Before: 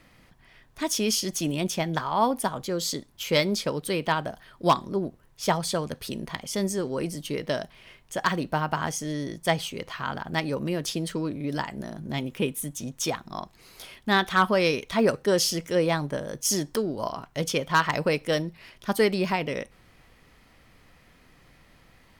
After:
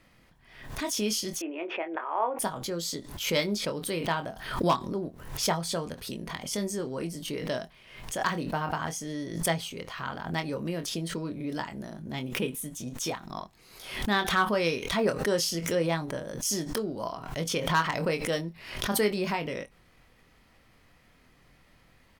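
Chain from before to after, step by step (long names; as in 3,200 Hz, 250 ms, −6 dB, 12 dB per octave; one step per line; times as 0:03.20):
0:01.39–0:02.39: Chebyshev band-pass filter 320–2,600 Hz, order 4
double-tracking delay 24 ms −7.5 dB
background raised ahead of every attack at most 75 dB per second
level −5 dB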